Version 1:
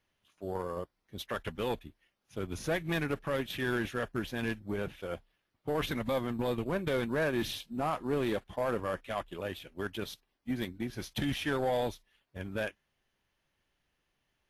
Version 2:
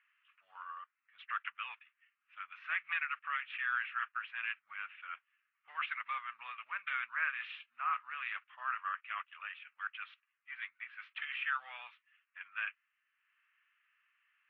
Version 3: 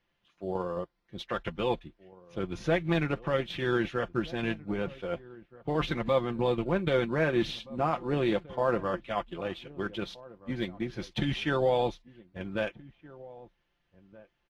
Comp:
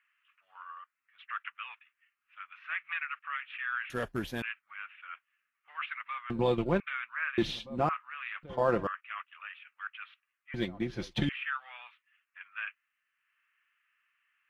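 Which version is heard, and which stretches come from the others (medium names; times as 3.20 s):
2
3.90–4.42 s: from 1
6.30–6.80 s: from 3
7.38–7.89 s: from 3
8.43–8.87 s: from 3
10.54–11.29 s: from 3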